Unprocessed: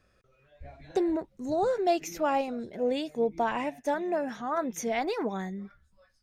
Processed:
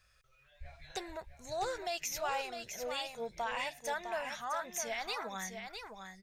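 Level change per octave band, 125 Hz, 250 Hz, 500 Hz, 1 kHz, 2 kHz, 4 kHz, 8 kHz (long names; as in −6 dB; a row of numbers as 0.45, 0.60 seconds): −10.5, −20.0, −11.5, −7.0, −1.0, +2.0, +2.5 decibels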